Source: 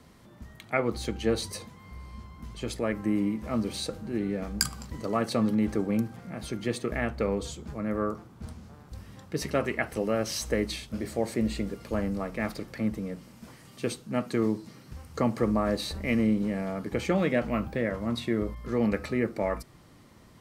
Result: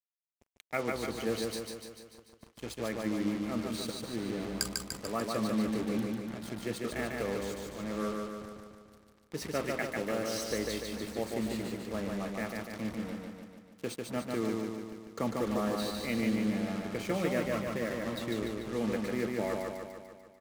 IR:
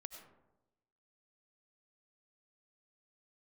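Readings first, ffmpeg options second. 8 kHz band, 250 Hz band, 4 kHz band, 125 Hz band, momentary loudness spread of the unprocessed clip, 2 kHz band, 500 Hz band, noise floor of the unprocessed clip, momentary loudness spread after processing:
−3.0 dB, −5.0 dB, −3.0 dB, −7.0 dB, 18 LU, −3.5 dB, −4.5 dB, −53 dBFS, 11 LU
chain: -af "lowshelf=frequency=71:gain=-11,acrusher=bits=5:mix=0:aa=0.5,aecho=1:1:147|294|441|588|735|882|1029|1176|1323:0.708|0.418|0.246|0.145|0.0858|0.0506|0.0299|0.0176|0.0104,volume=-6.5dB"

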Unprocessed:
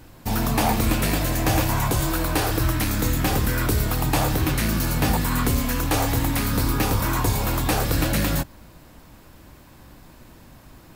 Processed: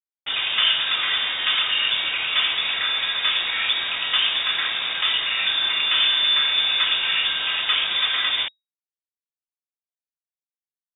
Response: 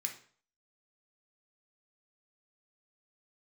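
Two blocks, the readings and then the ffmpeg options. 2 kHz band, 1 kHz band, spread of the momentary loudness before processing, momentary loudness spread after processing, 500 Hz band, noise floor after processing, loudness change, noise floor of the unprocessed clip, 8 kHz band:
+6.5 dB, −5.5 dB, 2 LU, 5 LU, −15.0 dB, below −85 dBFS, +3.0 dB, −48 dBFS, below −40 dB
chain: -filter_complex "[0:a]acrossover=split=220 2200:gain=0.141 1 0.0708[link_01][link_02][link_03];[link_01][link_02][link_03]amix=inputs=3:normalize=0,aecho=1:1:3.2:0.45[link_04];[1:a]atrim=start_sample=2205,asetrate=48510,aresample=44100[link_05];[link_04][link_05]afir=irnorm=-1:irlink=0,aresample=16000,acrusher=bits=5:mix=0:aa=0.000001,aresample=44100,lowpass=frequency=3200:width_type=q:width=0.5098,lowpass=frequency=3200:width_type=q:width=0.6013,lowpass=frequency=3200:width_type=q:width=0.9,lowpass=frequency=3200:width_type=q:width=2.563,afreqshift=-3800,volume=8.5dB"

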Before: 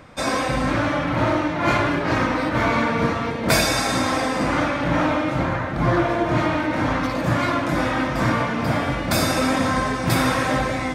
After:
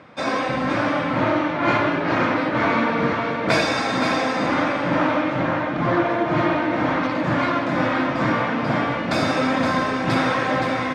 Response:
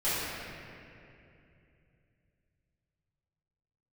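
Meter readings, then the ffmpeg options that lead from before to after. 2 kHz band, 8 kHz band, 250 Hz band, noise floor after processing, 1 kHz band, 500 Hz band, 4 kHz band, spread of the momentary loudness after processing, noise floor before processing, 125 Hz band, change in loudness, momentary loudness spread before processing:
+0.5 dB, −10.0 dB, +0.5 dB, −25 dBFS, +1.0 dB, +1.0 dB, −2.0 dB, 3 LU, −26 dBFS, −4.0 dB, 0.0 dB, 3 LU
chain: -filter_complex "[0:a]highpass=150,lowpass=4000,asplit=2[link_01][link_02];[link_02]aecho=0:1:519:0.473[link_03];[link_01][link_03]amix=inputs=2:normalize=0"

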